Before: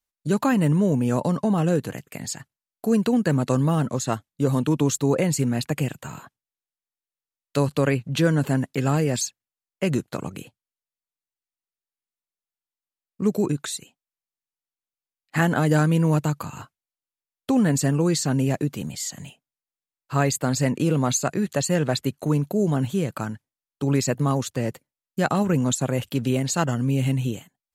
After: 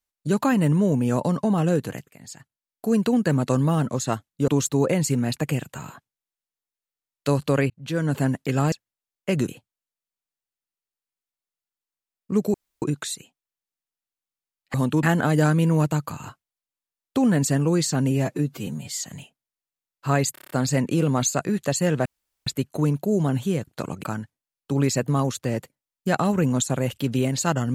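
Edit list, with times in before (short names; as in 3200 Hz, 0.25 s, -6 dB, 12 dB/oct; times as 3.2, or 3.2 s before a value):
2.12–3.01 fade in, from -15.5 dB
4.48–4.77 move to 15.36
7.99–8.49 fade in
9.01–9.26 cut
10.02–10.38 move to 23.15
13.44 insert room tone 0.28 s
18.44–18.97 stretch 1.5×
20.39 stutter 0.03 s, 7 plays
21.94 insert room tone 0.41 s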